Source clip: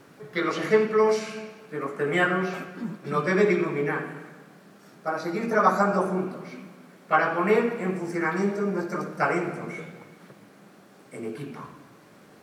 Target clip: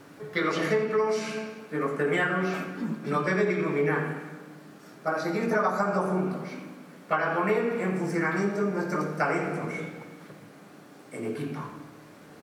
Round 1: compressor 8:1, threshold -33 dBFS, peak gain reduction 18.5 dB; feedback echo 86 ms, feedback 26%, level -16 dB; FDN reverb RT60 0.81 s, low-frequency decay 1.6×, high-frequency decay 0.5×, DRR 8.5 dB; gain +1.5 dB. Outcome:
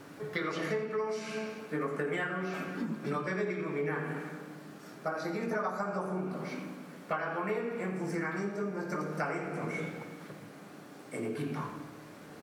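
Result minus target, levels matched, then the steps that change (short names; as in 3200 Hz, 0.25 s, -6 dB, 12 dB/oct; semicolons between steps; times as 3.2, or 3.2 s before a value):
compressor: peak gain reduction +8.5 dB
change: compressor 8:1, threshold -23.5 dBFS, peak gain reduction 10 dB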